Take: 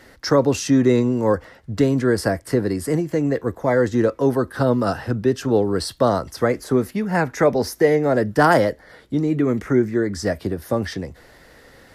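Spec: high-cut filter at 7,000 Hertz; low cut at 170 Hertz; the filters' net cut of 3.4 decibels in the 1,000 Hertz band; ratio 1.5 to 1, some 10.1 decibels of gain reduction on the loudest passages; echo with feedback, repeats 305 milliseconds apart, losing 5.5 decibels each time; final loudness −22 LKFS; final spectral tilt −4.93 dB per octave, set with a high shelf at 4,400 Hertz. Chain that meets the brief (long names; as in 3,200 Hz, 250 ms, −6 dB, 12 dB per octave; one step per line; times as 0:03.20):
high-pass filter 170 Hz
low-pass filter 7,000 Hz
parametric band 1,000 Hz −5 dB
high-shelf EQ 4,400 Hz +4.5 dB
downward compressor 1.5 to 1, threshold −41 dBFS
repeating echo 305 ms, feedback 53%, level −5.5 dB
level +7 dB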